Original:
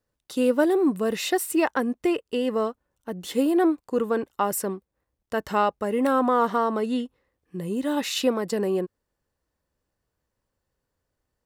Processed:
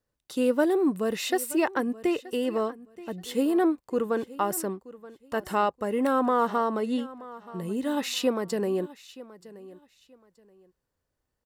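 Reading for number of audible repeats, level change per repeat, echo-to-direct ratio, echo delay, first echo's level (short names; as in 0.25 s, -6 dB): 2, -12.5 dB, -18.0 dB, 0.927 s, -18.5 dB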